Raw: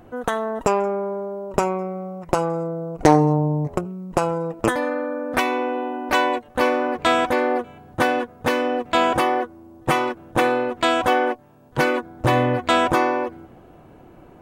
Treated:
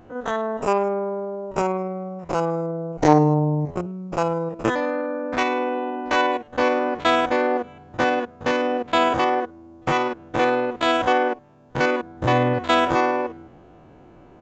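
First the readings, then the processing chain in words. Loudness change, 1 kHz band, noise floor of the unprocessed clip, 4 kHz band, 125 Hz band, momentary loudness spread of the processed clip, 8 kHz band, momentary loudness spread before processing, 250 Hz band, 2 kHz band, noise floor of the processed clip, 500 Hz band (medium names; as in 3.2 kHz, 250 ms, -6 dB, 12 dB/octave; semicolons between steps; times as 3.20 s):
-0.5 dB, -0.5 dB, -48 dBFS, -1.0 dB, -0.5 dB, 9 LU, -5.5 dB, 9 LU, -0.5 dB, -1.0 dB, -49 dBFS, -0.5 dB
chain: spectrogram pixelated in time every 50 ms; resampled via 16 kHz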